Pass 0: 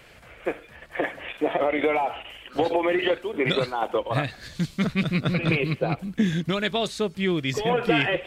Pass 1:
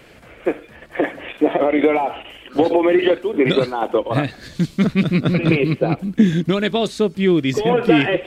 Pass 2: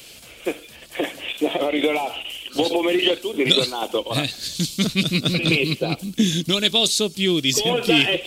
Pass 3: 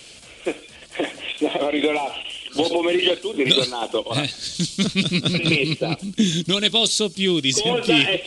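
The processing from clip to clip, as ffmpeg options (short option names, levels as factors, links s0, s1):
-af "equalizer=f=290:t=o:w=1.6:g=8.5,volume=1.33"
-af "aexciter=amount=6.6:drive=6.9:freq=2700,volume=0.531"
-af "aresample=22050,aresample=44100"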